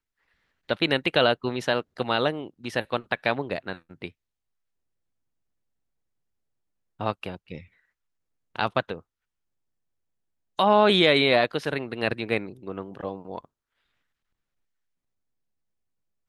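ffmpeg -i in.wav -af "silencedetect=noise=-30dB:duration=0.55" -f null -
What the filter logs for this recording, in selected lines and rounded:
silence_start: 0.00
silence_end: 0.69 | silence_duration: 0.69
silence_start: 4.08
silence_end: 7.01 | silence_duration: 2.93
silence_start: 7.58
silence_end: 8.56 | silence_duration: 0.98
silence_start: 8.98
silence_end: 10.59 | silence_duration: 1.61
silence_start: 13.38
silence_end: 16.28 | silence_duration: 2.90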